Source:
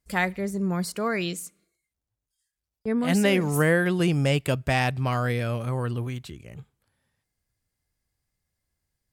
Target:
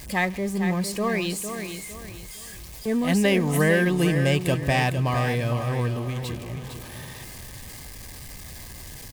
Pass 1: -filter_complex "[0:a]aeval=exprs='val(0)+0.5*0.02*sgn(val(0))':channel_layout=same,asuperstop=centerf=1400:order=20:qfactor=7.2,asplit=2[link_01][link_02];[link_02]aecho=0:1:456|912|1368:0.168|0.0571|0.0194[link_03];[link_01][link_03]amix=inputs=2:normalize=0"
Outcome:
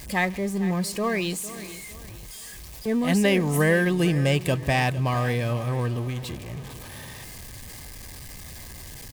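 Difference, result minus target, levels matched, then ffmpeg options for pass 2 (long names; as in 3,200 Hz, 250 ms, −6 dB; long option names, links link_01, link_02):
echo-to-direct −7 dB
-filter_complex "[0:a]aeval=exprs='val(0)+0.5*0.02*sgn(val(0))':channel_layout=same,asuperstop=centerf=1400:order=20:qfactor=7.2,asplit=2[link_01][link_02];[link_02]aecho=0:1:456|912|1368|1824:0.376|0.128|0.0434|0.0148[link_03];[link_01][link_03]amix=inputs=2:normalize=0"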